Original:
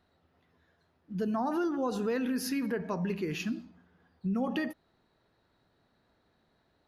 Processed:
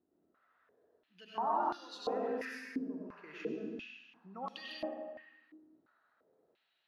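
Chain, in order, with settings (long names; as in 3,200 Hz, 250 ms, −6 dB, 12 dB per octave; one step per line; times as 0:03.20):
0:02.45–0:03.24: output level in coarse steps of 22 dB
convolution reverb RT60 1.4 s, pre-delay 55 ms, DRR −5 dB
band-pass on a step sequencer 2.9 Hz 320–4,100 Hz
level +2 dB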